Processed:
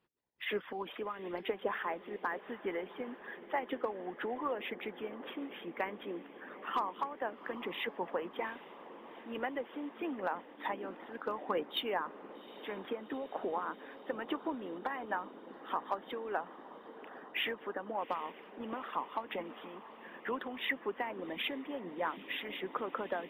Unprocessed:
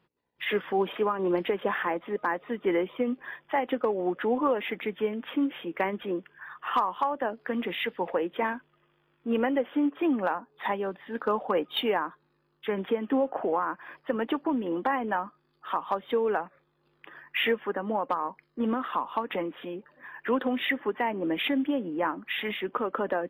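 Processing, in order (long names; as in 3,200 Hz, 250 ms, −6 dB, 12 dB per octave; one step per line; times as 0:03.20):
feedback delay with all-pass diffusion 792 ms, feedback 72%, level −14 dB
harmonic and percussive parts rebalanced harmonic −11 dB
level −5.5 dB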